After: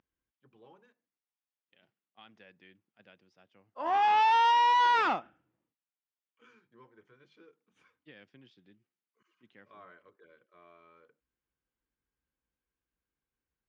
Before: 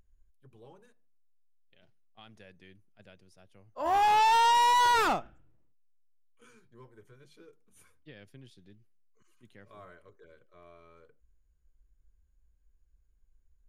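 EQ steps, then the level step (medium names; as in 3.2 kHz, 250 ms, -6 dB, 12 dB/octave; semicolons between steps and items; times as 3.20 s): cabinet simulation 240–4500 Hz, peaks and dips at 410 Hz -5 dB, 620 Hz -5 dB, 4.1 kHz -7 dB; 0.0 dB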